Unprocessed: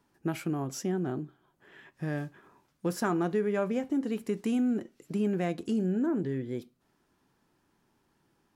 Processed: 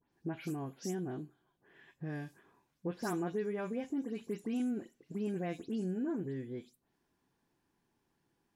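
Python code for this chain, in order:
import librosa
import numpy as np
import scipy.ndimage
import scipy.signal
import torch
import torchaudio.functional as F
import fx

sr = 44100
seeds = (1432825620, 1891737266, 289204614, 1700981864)

y = fx.spec_delay(x, sr, highs='late', ms=123)
y = fx.notch(y, sr, hz=1300.0, q=8.8)
y = y * 10.0 ** (-7.0 / 20.0)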